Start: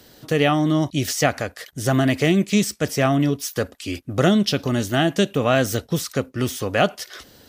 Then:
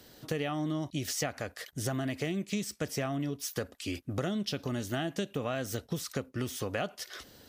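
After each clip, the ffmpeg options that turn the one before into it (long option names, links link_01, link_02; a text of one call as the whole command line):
ffmpeg -i in.wav -af "acompressor=threshold=-24dB:ratio=6,volume=-6dB" out.wav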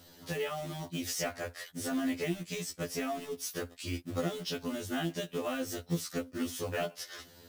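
ffmpeg -i in.wav -af "acrusher=bits=4:mode=log:mix=0:aa=0.000001,afftfilt=real='re*2*eq(mod(b,4),0)':imag='im*2*eq(mod(b,4),0)':win_size=2048:overlap=0.75,volume=1.5dB" out.wav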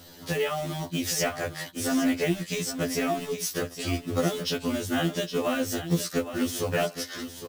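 ffmpeg -i in.wav -af "aecho=1:1:815:0.299,volume=7.5dB" out.wav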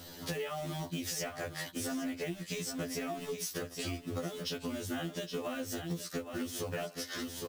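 ffmpeg -i in.wav -af "acompressor=threshold=-35dB:ratio=6" out.wav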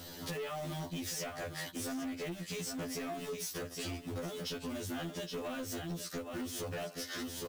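ffmpeg -i in.wav -af "asoftclip=type=tanh:threshold=-36dB,volume=1.5dB" out.wav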